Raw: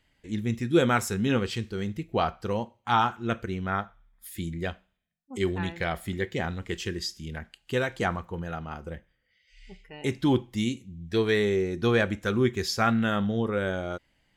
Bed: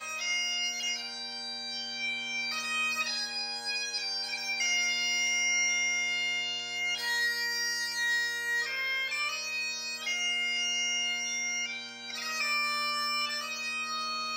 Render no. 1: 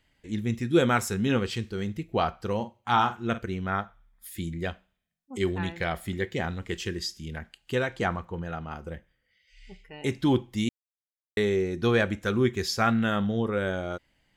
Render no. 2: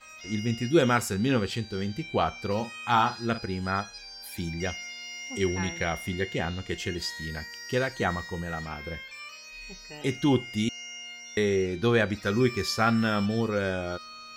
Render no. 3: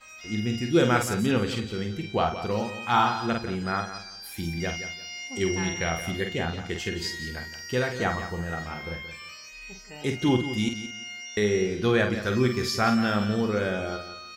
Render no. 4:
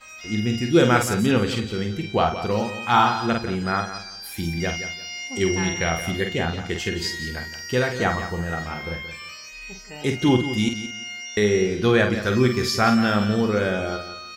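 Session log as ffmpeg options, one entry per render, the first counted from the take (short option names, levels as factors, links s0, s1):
-filter_complex "[0:a]asettb=1/sr,asplit=3[s0][s1][s2];[s0]atrim=end=2.554[s3];[s1]atrim=start=2.55:end=3.39,asetpts=PTS-STARTPTS,afade=t=in:d=0.004:c=qsin,afade=t=out:st=0.836:d=0.004:c=qsin,asplit=2[s4][s5];[s5]adelay=48,volume=0.237[s6];[s4][s6]amix=inputs=2:normalize=0,atrim=end_sample=37044[s7];[s2]atrim=start=3.386[s8];[s3][s7]acrossfade=d=0.004:c1=hsin:c2=qsin[s9];[s9][s8]acrossfade=d=0.004:c1=qsin:c2=hsin,asettb=1/sr,asplit=3[s10][s11][s12];[s10]atrim=end=7.754[s13];[s11]atrim=start=7.75:end=8.7,asetpts=PTS-STARTPTS,afade=t=in:d=0.004:c=qsin,afade=t=out:st=0.946:d=0.004:c=qsin,highshelf=f=7900:g=-8.5[s14];[s12]atrim=start=8.696[s15];[s13][s14]acrossfade=d=0.004:c1=hsin:c2=qsin[s16];[s16][s15]acrossfade=d=0.004:c1=qsin:c2=hsin,asplit=3[s17][s18][s19];[s17]atrim=end=10.69,asetpts=PTS-STARTPTS,afade=t=out:st=10.686:d=0.004:c=hsin[s20];[s18]atrim=start=10.69:end=11.37,asetpts=PTS-STARTPTS,volume=0[s21];[s19]atrim=start=11.37,asetpts=PTS-STARTPTS,afade=t=in:d=0.004:c=hsin[s22];[s20][s21][s22]concat=n=3:v=0:a=1"
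-filter_complex "[1:a]volume=0.299[s0];[0:a][s0]amix=inputs=2:normalize=0"
-filter_complex "[0:a]asplit=2[s0][s1];[s1]adelay=48,volume=0.447[s2];[s0][s2]amix=inputs=2:normalize=0,asplit=2[s3][s4];[s4]aecho=0:1:174|348|522:0.266|0.0665|0.0166[s5];[s3][s5]amix=inputs=2:normalize=0"
-af "volume=1.68"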